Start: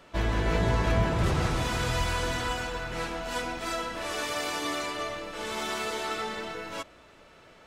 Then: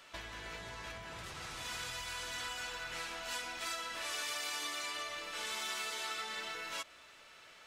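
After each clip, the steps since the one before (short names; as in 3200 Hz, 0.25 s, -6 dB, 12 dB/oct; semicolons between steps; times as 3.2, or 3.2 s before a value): compressor 12:1, threshold -34 dBFS, peak gain reduction 15 dB; tilt shelf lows -9.5 dB, about 890 Hz; gain -6 dB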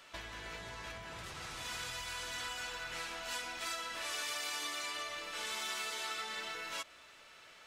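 nothing audible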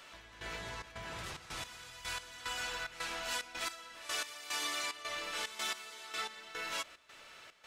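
step gate "x..xxx.xxx.x..." 110 bpm -12 dB; gain +3 dB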